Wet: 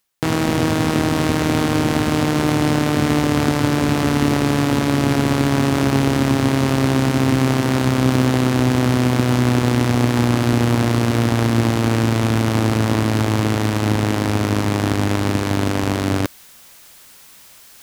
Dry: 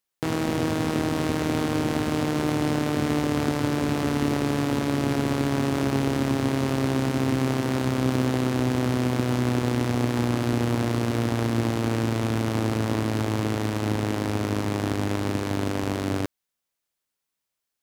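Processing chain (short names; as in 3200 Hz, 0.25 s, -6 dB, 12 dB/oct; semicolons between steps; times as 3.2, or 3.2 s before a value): bell 430 Hz -3 dB 1.4 oct; reverse; upward compressor, threshold -29 dBFS; reverse; gain +8.5 dB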